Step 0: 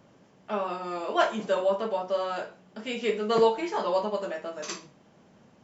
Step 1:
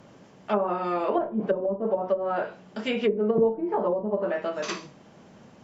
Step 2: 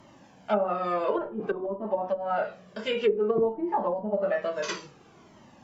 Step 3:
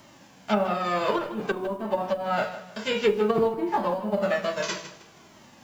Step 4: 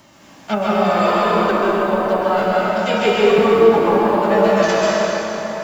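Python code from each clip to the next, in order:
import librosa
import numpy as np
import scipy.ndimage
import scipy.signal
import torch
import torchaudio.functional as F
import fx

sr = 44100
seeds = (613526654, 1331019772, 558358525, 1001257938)

y1 = fx.env_lowpass_down(x, sr, base_hz=330.0, full_db=-23.0)
y1 = F.gain(torch.from_numpy(y1), 6.5).numpy()
y2 = fx.low_shelf(y1, sr, hz=220.0, db=-3.5)
y2 = fx.comb_cascade(y2, sr, direction='falling', hz=0.56)
y2 = F.gain(torch.from_numpy(y2), 4.0).numpy()
y3 = fx.envelope_flatten(y2, sr, power=0.6)
y3 = fx.echo_feedback(y3, sr, ms=157, feedback_pct=30, wet_db=-13)
y3 = F.gain(torch.from_numpy(y3), 1.5).numpy()
y4 = fx.rev_plate(y3, sr, seeds[0], rt60_s=4.8, hf_ratio=0.55, predelay_ms=115, drr_db=-7.0)
y4 = F.gain(torch.from_numpy(y4), 3.0).numpy()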